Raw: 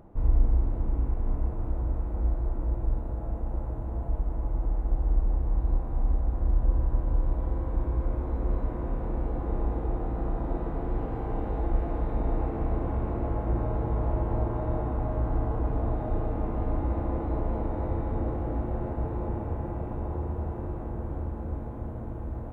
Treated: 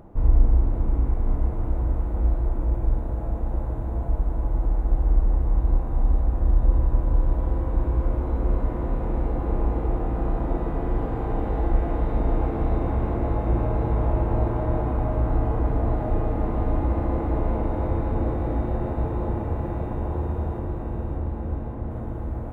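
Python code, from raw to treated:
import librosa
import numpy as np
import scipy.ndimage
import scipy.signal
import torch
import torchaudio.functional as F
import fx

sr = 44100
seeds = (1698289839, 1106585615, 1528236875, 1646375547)

p1 = fx.air_absorb(x, sr, metres=350.0, at=(20.59, 21.91))
p2 = p1 + fx.echo_wet_highpass(p1, sr, ms=576, feedback_pct=66, hz=2000.0, wet_db=-3.0, dry=0)
y = p2 * librosa.db_to_amplitude(5.0)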